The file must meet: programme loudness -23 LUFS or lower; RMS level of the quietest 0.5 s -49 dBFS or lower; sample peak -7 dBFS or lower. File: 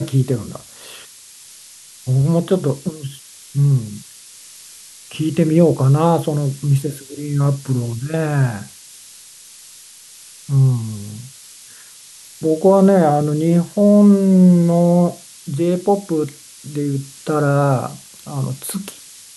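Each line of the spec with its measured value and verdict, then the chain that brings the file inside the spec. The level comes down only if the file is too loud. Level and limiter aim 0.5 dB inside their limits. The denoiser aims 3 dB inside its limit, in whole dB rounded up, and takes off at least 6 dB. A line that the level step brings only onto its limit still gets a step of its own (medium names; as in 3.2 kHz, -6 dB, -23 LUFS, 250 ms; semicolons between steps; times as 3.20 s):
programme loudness -17.0 LUFS: fail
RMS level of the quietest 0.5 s -42 dBFS: fail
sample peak -2.5 dBFS: fail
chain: noise reduction 6 dB, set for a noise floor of -42 dBFS; trim -6.5 dB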